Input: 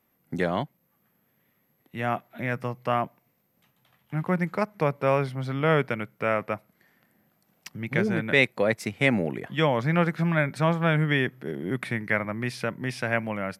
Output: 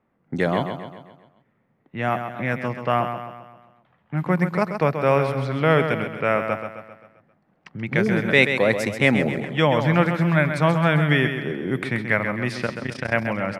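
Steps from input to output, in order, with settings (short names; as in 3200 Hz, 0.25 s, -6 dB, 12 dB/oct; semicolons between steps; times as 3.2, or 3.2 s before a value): low-pass opened by the level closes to 1600 Hz, open at -23 dBFS; 12.66–13.12 AM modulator 30 Hz, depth 85%; on a send: feedback echo 0.132 s, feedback 50%, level -8 dB; on the sum: gain +4 dB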